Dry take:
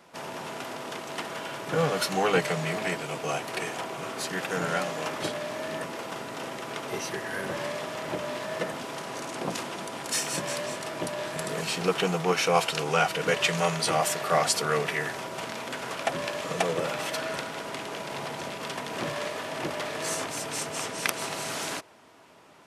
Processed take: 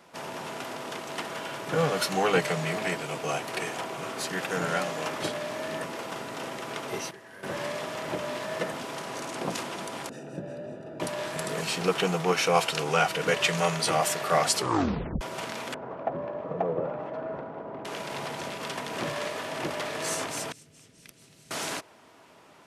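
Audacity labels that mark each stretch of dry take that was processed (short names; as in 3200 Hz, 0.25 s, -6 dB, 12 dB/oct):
6.670000	7.870000	dip -14.5 dB, fades 0.44 s logarithmic
10.090000	11.000000	running mean over 41 samples
14.560000	14.560000	tape stop 0.65 s
15.740000	17.850000	Chebyshev low-pass 750 Hz
20.520000	21.510000	passive tone stack bass-middle-treble 10-0-1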